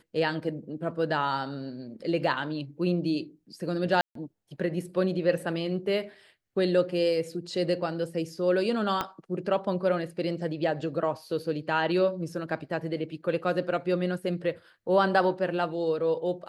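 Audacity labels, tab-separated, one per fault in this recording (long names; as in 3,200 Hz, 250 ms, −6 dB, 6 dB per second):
4.010000	4.150000	drop-out 143 ms
9.010000	9.010000	click −14 dBFS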